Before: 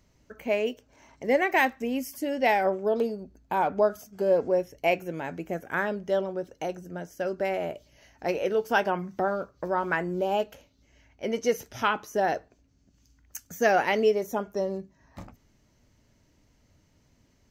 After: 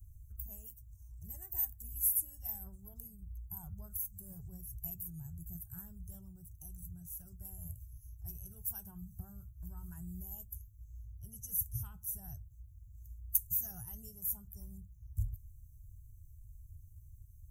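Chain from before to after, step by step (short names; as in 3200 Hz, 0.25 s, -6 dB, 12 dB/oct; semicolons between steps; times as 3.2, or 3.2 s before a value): bin magnitudes rounded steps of 15 dB; inverse Chebyshev band-stop 240–4600 Hz, stop band 50 dB; gain +15 dB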